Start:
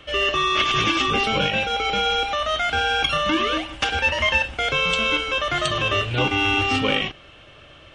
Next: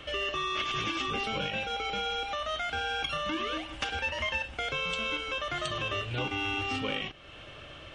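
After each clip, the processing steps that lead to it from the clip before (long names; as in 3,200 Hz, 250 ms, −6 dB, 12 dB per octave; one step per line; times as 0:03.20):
downward compressor 2 to 1, threshold −39 dBFS, peak gain reduction 12.5 dB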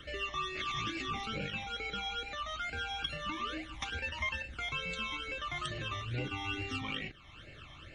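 all-pass phaser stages 12, 2.3 Hz, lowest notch 470–1,100 Hz
level −2 dB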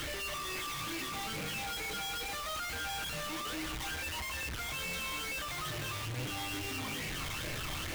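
sign of each sample alone
convolution reverb RT60 1.3 s, pre-delay 6 ms, DRR 9.5 dB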